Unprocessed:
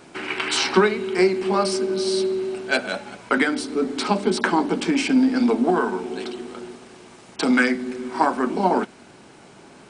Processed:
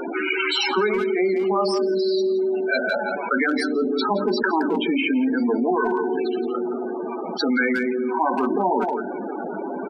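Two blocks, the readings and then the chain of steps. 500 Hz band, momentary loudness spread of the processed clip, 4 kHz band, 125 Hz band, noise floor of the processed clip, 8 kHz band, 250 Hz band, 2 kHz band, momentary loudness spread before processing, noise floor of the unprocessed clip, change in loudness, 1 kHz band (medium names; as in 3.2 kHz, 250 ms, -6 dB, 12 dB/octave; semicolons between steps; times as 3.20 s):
+1.5 dB, 7 LU, -0.5 dB, -6.0 dB, -30 dBFS, under -10 dB, -1.0 dB, +0.5 dB, 12 LU, -47 dBFS, -0.5 dB, 0.0 dB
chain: peaking EQ 120 Hz -14.5 dB 1.2 oct; in parallel at -9.5 dB: saturation -16.5 dBFS, distortion -13 dB; on the sum: loudest bins only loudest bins 16; speakerphone echo 170 ms, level -11 dB; level flattener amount 70%; trim -5.5 dB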